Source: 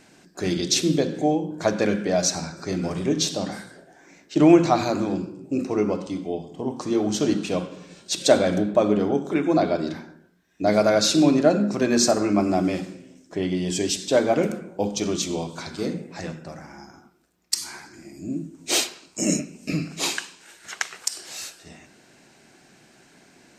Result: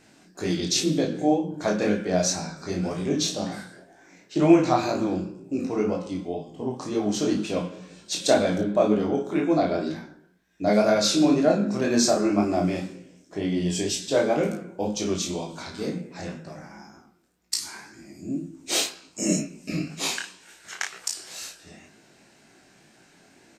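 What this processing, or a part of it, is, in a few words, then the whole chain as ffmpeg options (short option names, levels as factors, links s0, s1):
double-tracked vocal: -filter_complex "[0:a]asplit=2[s0][s1];[s1]adelay=33,volume=0.501[s2];[s0][s2]amix=inputs=2:normalize=0,flanger=delay=17.5:depth=6.3:speed=2"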